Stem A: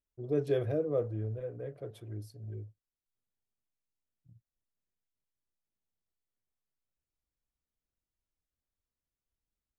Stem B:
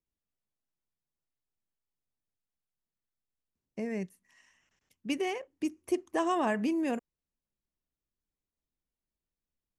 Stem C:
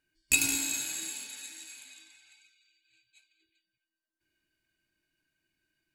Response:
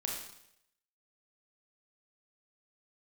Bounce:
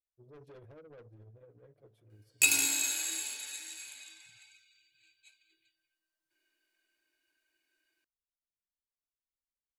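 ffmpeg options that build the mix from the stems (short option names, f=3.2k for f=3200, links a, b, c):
-filter_complex "[0:a]tremolo=f=14:d=0.61,asoftclip=type=tanh:threshold=-36dB,volume=-13.5dB,asplit=2[a][b];[b]volume=-19.5dB[c];[2:a]highpass=f=340:w=0.5412,highpass=f=340:w=1.3066,adelay=2100,volume=1.5dB[d];[c]aecho=0:1:656|1312|1968|2624|3280:1|0.37|0.137|0.0507|0.0187[e];[a][d][e]amix=inputs=3:normalize=0,asoftclip=type=tanh:threshold=-11dB"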